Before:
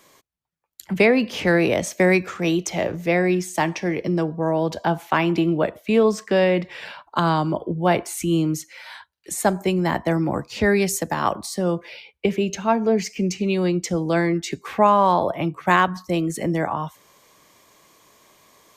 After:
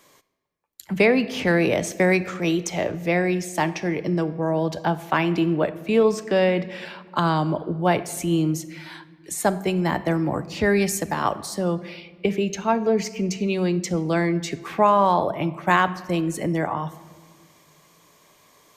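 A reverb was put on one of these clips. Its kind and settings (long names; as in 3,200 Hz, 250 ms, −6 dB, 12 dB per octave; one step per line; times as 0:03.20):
rectangular room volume 1,900 cubic metres, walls mixed, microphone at 0.38 metres
level −1.5 dB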